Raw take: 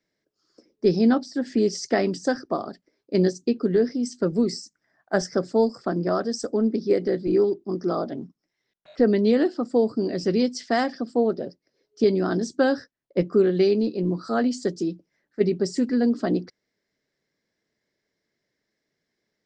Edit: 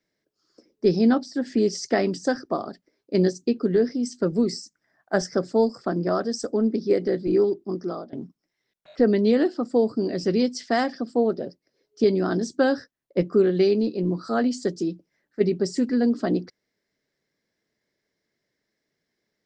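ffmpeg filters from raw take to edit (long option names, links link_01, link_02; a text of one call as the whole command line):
ffmpeg -i in.wav -filter_complex "[0:a]asplit=2[link_01][link_02];[link_01]atrim=end=8.13,asetpts=PTS-STARTPTS,afade=type=out:start_time=7.67:duration=0.46:silence=0.125893[link_03];[link_02]atrim=start=8.13,asetpts=PTS-STARTPTS,afade=type=in:duration=0.004:curve=hsin:silence=0.125893[link_04];[link_03][link_04]concat=n=2:v=0:a=1" out.wav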